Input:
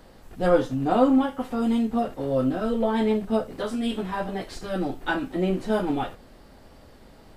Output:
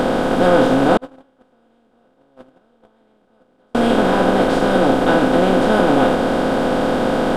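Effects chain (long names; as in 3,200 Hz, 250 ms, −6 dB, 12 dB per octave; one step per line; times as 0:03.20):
compressor on every frequency bin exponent 0.2
0:00.97–0:03.75: noise gate −8 dBFS, range −43 dB
level +1.5 dB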